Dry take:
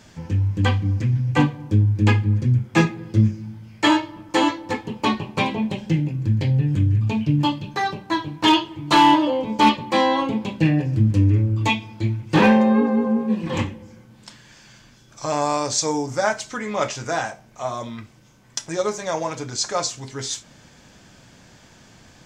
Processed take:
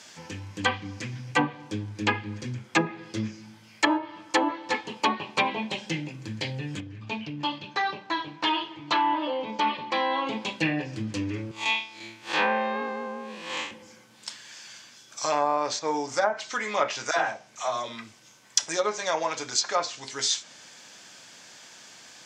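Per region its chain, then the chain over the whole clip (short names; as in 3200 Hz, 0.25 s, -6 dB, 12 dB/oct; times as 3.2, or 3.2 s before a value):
6.8–10.27 air absorption 140 m + compressor 2.5:1, threshold -22 dBFS
11.51–13.71 time blur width 0.122 s + HPF 670 Hz 6 dB/oct
17.11–18.67 low shelf 63 Hz +10.5 dB + dispersion lows, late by 69 ms, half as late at 540 Hz
whole clip: weighting filter A; treble ducked by the level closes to 700 Hz, closed at -16 dBFS; high shelf 3300 Hz +9.5 dB; gain -1 dB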